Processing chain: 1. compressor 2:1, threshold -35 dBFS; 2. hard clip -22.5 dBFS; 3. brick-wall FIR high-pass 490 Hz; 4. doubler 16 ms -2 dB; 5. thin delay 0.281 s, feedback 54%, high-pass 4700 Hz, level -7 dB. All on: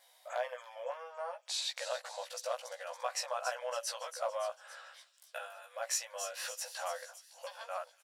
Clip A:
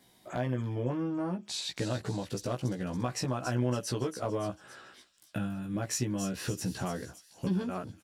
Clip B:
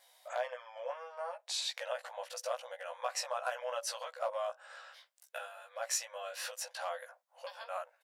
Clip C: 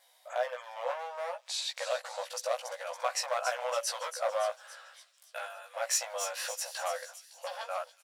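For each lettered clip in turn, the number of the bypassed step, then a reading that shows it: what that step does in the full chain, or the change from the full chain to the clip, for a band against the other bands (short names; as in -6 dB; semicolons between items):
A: 3, 500 Hz band +3.0 dB; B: 5, echo-to-direct -21.5 dB to none; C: 1, mean gain reduction 5.0 dB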